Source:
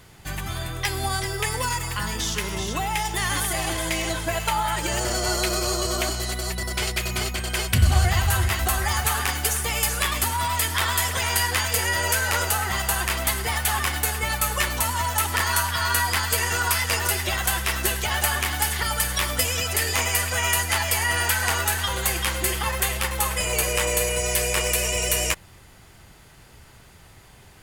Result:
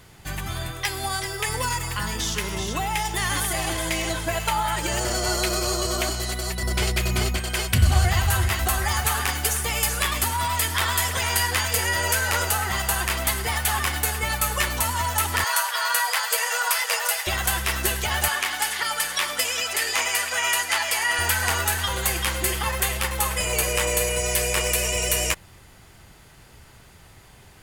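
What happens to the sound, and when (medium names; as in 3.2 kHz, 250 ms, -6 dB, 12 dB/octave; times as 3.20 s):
0.71–1.48 s: bass shelf 330 Hz -6.5 dB
6.63–7.38 s: bass shelf 480 Hz +6 dB
15.44–17.27 s: brick-wall FIR high-pass 440 Hz
18.28–21.19 s: frequency weighting A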